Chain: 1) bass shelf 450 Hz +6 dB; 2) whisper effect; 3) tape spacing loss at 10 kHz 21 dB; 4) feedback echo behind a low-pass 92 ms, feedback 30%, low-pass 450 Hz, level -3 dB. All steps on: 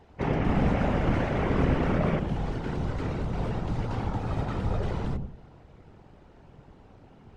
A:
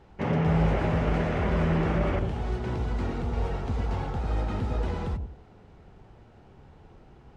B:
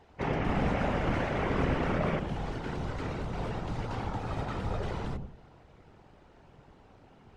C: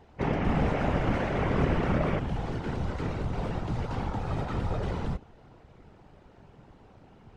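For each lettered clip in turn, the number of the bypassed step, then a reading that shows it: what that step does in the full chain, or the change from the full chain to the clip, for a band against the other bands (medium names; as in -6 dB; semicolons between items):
2, crest factor change -2.0 dB; 1, 125 Hz band -4.5 dB; 4, echo-to-direct -14.5 dB to none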